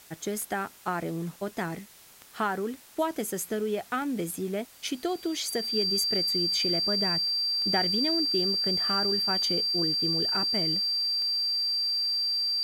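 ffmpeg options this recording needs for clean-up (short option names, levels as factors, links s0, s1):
-af "adeclick=t=4,bandreject=f=4700:w=30,afwtdn=0.0025"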